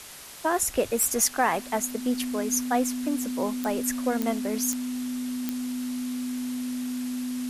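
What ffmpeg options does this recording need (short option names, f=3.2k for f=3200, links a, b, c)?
-af "adeclick=t=4,bandreject=f=250:w=30,afftdn=nr=30:nf=-37"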